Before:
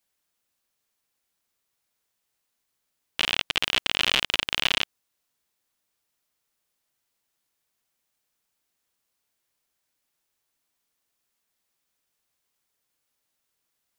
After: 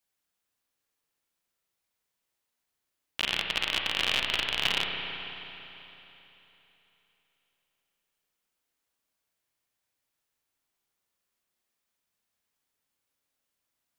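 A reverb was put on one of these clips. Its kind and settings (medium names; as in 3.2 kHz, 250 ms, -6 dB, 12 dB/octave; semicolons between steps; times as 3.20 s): spring tank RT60 3.4 s, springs 33/55 ms, chirp 60 ms, DRR 1.5 dB; trim -5 dB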